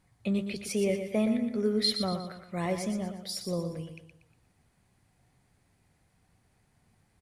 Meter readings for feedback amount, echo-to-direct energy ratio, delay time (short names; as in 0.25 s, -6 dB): 40%, -7.0 dB, 0.119 s